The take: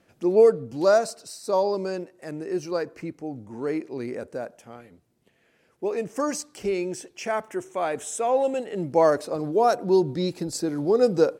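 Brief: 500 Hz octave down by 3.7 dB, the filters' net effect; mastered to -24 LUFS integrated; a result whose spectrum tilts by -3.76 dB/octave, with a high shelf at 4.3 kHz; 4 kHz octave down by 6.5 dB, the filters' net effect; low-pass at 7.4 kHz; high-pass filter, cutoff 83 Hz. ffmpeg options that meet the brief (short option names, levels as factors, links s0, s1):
-af "highpass=83,lowpass=7400,equalizer=f=500:t=o:g=-4.5,equalizer=f=4000:t=o:g=-5,highshelf=f=4300:g=-4,volume=1.58"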